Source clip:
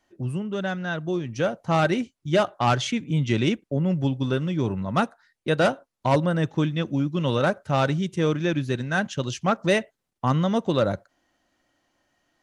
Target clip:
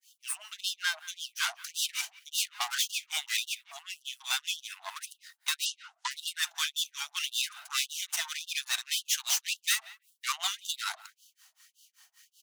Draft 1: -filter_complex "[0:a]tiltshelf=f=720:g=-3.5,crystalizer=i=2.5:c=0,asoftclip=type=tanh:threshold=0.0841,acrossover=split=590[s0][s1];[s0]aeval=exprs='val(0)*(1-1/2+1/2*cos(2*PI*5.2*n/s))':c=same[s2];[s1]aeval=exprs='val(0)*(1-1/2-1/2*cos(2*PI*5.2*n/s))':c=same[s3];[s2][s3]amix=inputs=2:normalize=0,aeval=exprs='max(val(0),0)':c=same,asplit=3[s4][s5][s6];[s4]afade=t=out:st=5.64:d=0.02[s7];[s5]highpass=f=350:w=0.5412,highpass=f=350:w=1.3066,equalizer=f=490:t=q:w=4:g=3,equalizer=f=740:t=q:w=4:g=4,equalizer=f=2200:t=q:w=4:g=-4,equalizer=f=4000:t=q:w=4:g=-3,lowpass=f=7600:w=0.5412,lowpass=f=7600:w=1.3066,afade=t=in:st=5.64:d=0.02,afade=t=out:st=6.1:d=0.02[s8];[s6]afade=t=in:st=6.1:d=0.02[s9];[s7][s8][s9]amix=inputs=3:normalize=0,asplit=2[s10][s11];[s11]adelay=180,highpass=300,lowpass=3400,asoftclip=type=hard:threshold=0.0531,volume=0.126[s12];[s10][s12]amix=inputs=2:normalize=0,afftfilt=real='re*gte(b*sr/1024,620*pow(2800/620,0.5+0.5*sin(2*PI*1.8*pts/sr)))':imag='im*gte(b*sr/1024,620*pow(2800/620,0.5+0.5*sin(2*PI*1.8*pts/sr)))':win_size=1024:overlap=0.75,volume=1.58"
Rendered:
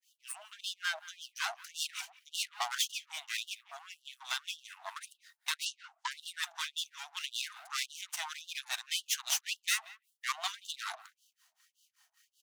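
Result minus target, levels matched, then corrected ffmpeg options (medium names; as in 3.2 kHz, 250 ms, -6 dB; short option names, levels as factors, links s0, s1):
1 kHz band +4.0 dB
-filter_complex "[0:a]tiltshelf=f=720:g=-14,crystalizer=i=2.5:c=0,asoftclip=type=tanh:threshold=0.0841,acrossover=split=590[s0][s1];[s0]aeval=exprs='val(0)*(1-1/2+1/2*cos(2*PI*5.2*n/s))':c=same[s2];[s1]aeval=exprs='val(0)*(1-1/2-1/2*cos(2*PI*5.2*n/s))':c=same[s3];[s2][s3]amix=inputs=2:normalize=0,aeval=exprs='max(val(0),0)':c=same,asplit=3[s4][s5][s6];[s4]afade=t=out:st=5.64:d=0.02[s7];[s5]highpass=f=350:w=0.5412,highpass=f=350:w=1.3066,equalizer=f=490:t=q:w=4:g=3,equalizer=f=740:t=q:w=4:g=4,equalizer=f=2200:t=q:w=4:g=-4,equalizer=f=4000:t=q:w=4:g=-3,lowpass=f=7600:w=0.5412,lowpass=f=7600:w=1.3066,afade=t=in:st=5.64:d=0.02,afade=t=out:st=6.1:d=0.02[s8];[s6]afade=t=in:st=6.1:d=0.02[s9];[s7][s8][s9]amix=inputs=3:normalize=0,asplit=2[s10][s11];[s11]adelay=180,highpass=300,lowpass=3400,asoftclip=type=hard:threshold=0.0531,volume=0.126[s12];[s10][s12]amix=inputs=2:normalize=0,afftfilt=real='re*gte(b*sr/1024,620*pow(2800/620,0.5+0.5*sin(2*PI*1.8*pts/sr)))':imag='im*gte(b*sr/1024,620*pow(2800/620,0.5+0.5*sin(2*PI*1.8*pts/sr)))':win_size=1024:overlap=0.75,volume=1.58"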